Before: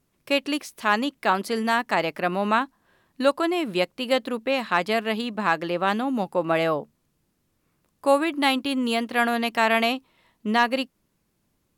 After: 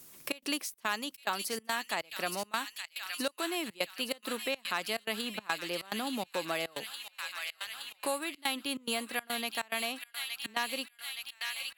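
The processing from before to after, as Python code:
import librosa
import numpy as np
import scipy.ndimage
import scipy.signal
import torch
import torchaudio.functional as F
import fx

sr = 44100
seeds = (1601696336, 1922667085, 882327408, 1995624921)

p1 = fx.low_shelf(x, sr, hz=190.0, db=-6.0)
p2 = fx.rider(p1, sr, range_db=10, speed_s=0.5)
p3 = librosa.effects.preemphasis(p2, coef=0.8, zi=[0.0])
p4 = p3 + fx.echo_wet_highpass(p3, sr, ms=869, feedback_pct=64, hz=2400.0, wet_db=-5.5, dry=0)
p5 = fx.step_gate(p4, sr, bpm=142, pattern='xxx.xxx.', floor_db=-24.0, edge_ms=4.5)
p6 = fx.band_squash(p5, sr, depth_pct=70)
y = p6 * 10.0 ** (1.5 / 20.0)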